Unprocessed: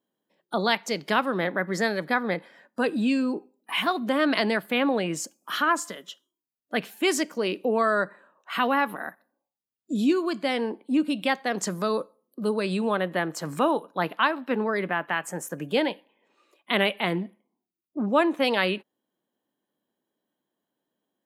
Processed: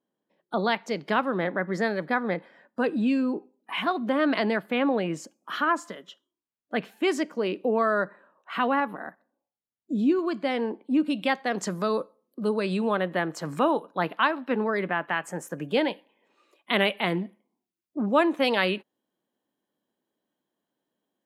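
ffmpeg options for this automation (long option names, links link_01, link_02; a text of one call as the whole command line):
ffmpeg -i in.wav -af "asetnsamples=nb_out_samples=441:pad=0,asendcmd='8.8 lowpass f 1100;10.19 lowpass f 2200;11.06 lowpass f 4500;15.88 lowpass f 9900',lowpass=frequency=2000:poles=1" out.wav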